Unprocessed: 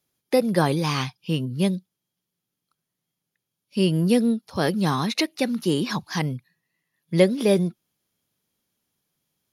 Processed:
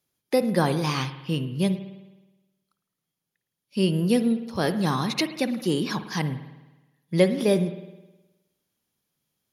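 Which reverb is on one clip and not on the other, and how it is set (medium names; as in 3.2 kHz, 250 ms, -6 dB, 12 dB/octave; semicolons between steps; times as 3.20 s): spring tank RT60 1.1 s, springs 52 ms, chirp 60 ms, DRR 10.5 dB; trim -2 dB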